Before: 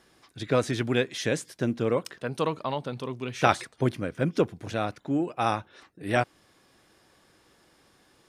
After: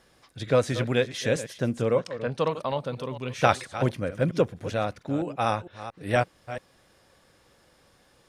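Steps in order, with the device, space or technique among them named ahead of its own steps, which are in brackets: chunks repeated in reverse 227 ms, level -12.5 dB; low shelf boost with a cut just above (bass shelf 90 Hz +7 dB; peaking EQ 340 Hz -4.5 dB 0.76 oct); 1.97–2.51 s: low-pass 6.3 kHz 12 dB/octave; peaking EQ 530 Hz +6 dB 0.41 oct

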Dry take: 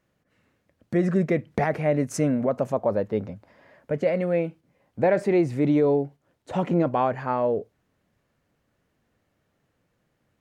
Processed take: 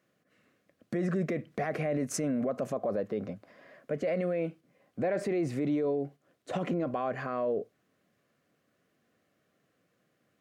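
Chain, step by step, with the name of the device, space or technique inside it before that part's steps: PA system with an anti-feedback notch (high-pass 170 Hz 12 dB/octave; Butterworth band-stop 890 Hz, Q 5.2; peak limiter -23 dBFS, peak gain reduction 11 dB)

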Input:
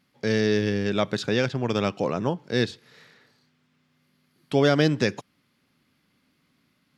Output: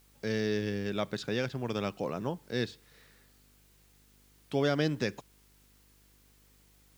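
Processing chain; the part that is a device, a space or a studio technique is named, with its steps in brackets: video cassette with head-switching buzz (mains buzz 50 Hz, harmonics 10, -57 dBFS -6 dB/octave; white noise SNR 31 dB); trim -8.5 dB

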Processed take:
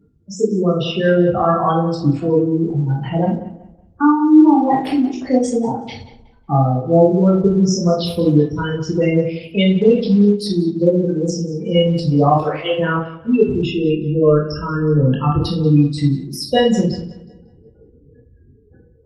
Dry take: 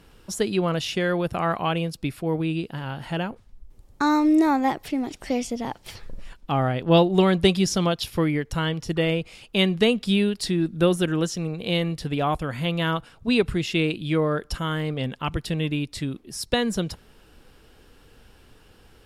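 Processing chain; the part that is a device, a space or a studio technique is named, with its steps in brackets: 12.35–12.79 s: steep high-pass 310 Hz 96 dB/octave; spectral gate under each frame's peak -10 dB strong; filtered feedback delay 184 ms, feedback 35%, low-pass 4.4 kHz, level -15 dB; far-field microphone of a smart speaker (reverberation RT60 0.40 s, pre-delay 17 ms, DRR -3 dB; high-pass 90 Hz 12 dB/octave; level rider gain up to 8.5 dB; Opus 20 kbps 48 kHz)

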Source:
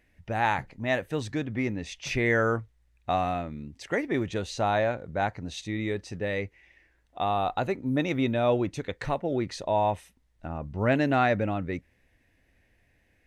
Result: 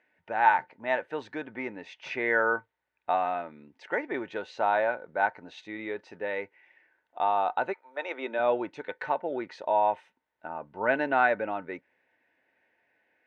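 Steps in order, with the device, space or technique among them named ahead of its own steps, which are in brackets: 7.72–8.38 s: high-pass 900 Hz -> 230 Hz 24 dB/octave; tin-can telephone (band-pass 430–2400 Hz; small resonant body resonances 900/1500 Hz, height 13 dB, ringing for 90 ms)

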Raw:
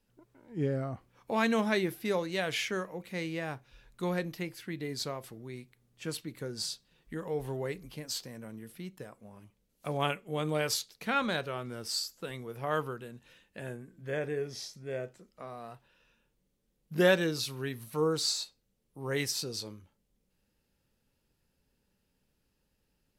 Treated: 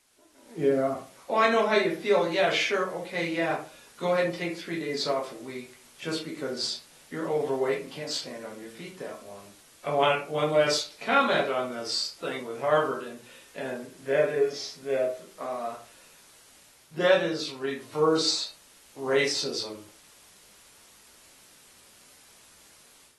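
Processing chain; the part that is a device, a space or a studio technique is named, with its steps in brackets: filmed off a television (band-pass 290–6200 Hz; peaking EQ 620 Hz +6 dB 0.36 oct; reverberation RT60 0.35 s, pre-delay 7 ms, DRR -2 dB; white noise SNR 26 dB; level rider gain up to 11 dB; trim -7 dB; AAC 32 kbps 32 kHz)

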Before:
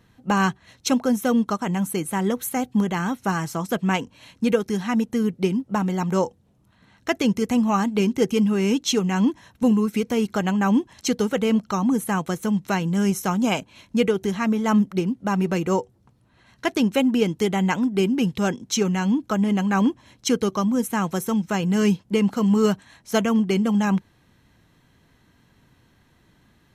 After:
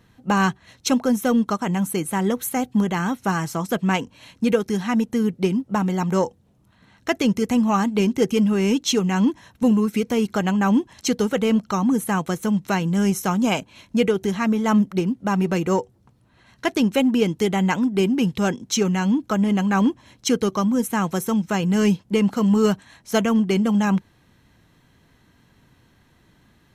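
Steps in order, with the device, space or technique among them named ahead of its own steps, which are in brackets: parallel distortion (in parallel at -14 dB: hard clipper -19.5 dBFS, distortion -11 dB)

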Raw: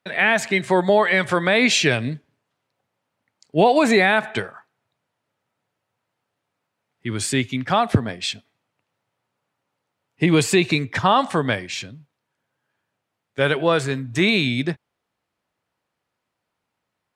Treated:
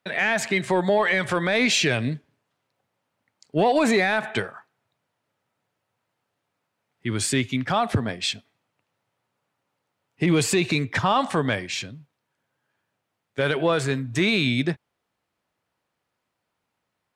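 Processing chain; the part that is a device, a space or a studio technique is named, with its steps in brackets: soft clipper into limiter (saturation -5.5 dBFS, distortion -23 dB; peak limiter -12 dBFS, peak gain reduction 5 dB)

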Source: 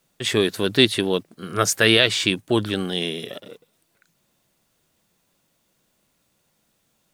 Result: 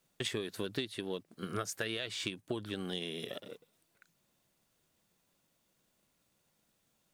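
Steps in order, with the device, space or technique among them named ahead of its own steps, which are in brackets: drum-bus smash (transient shaper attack +6 dB, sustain +1 dB; compression 8:1, threshold -25 dBFS, peak gain reduction 19 dB; saturation -12.5 dBFS, distortion -24 dB); trim -8 dB

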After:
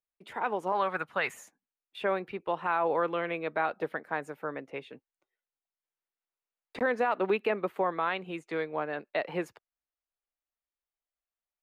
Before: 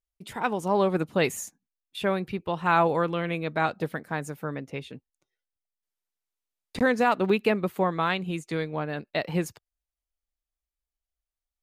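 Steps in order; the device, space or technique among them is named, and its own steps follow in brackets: 0.72–1.34 s: FFT filter 130 Hz 0 dB, 340 Hz -12 dB, 1.5 kHz +7 dB, 2.5 kHz +3 dB; DJ mixer with the lows and highs turned down (three-band isolator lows -17 dB, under 320 Hz, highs -16 dB, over 2.9 kHz; peak limiter -18 dBFS, peak gain reduction 8 dB)

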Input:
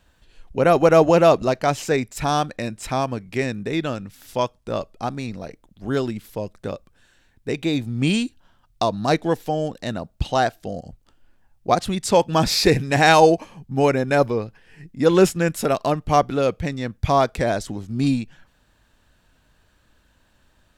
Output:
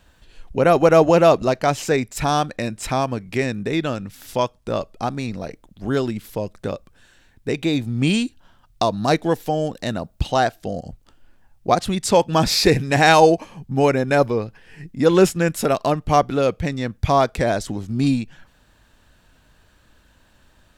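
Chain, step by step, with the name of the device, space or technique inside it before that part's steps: parallel compression (in parallel at -3 dB: compression, threshold -30 dBFS, peak gain reduction 20 dB); 8.84–10.32 s: on the sum: treble shelf 11 kHz +5.5 dB

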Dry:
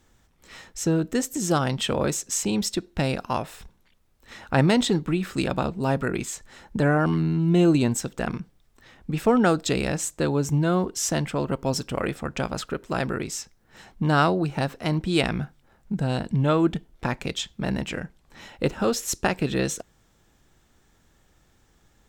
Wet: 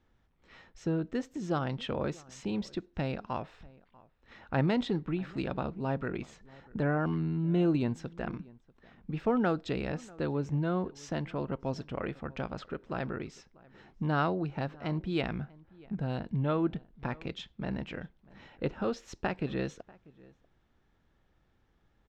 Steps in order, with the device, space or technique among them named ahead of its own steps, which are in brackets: shout across a valley (distance through air 220 m; echo from a far wall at 110 m, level -23 dB); trim -8 dB

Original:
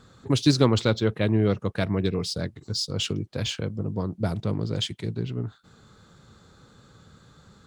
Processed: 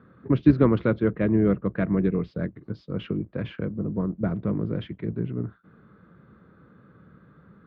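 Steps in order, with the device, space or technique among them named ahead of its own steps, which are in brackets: sub-octave bass pedal (octave divider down 2 oct, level -6 dB; cabinet simulation 69–2000 Hz, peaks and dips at 95 Hz -8 dB, 190 Hz +5 dB, 310 Hz +4 dB, 820 Hz -8 dB)

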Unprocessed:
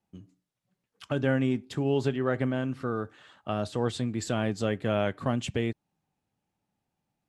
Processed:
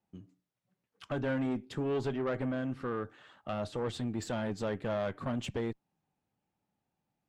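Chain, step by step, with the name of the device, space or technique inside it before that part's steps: tube preamp driven hard (valve stage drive 26 dB, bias 0.35; bass shelf 120 Hz -4 dB; treble shelf 3.6 kHz -7.5 dB)

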